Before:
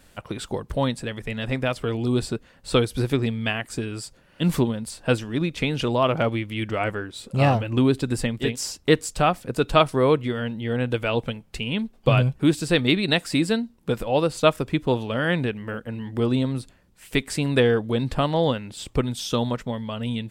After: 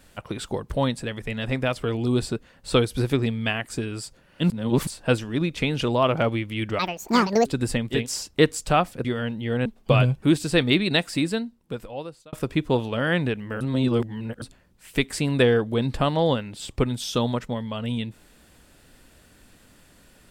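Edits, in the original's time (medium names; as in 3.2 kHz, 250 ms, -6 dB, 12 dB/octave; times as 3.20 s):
4.50–4.87 s: reverse
6.79–7.95 s: speed 174%
9.54–10.24 s: delete
10.85–11.83 s: delete
13.05–14.50 s: fade out
15.78–16.59 s: reverse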